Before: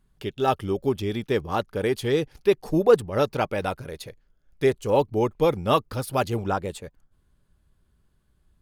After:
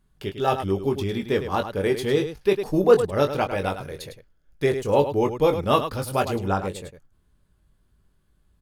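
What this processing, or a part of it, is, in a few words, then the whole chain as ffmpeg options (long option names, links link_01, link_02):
slapback doubling: -filter_complex "[0:a]asplit=3[link_01][link_02][link_03];[link_02]adelay=21,volume=-6.5dB[link_04];[link_03]adelay=104,volume=-9.5dB[link_05];[link_01][link_04][link_05]amix=inputs=3:normalize=0"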